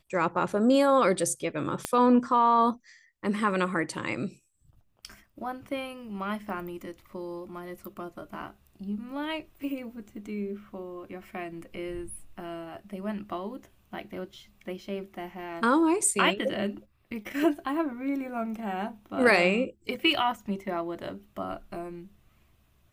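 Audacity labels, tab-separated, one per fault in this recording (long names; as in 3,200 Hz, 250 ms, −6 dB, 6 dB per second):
1.850000	1.850000	click −13 dBFS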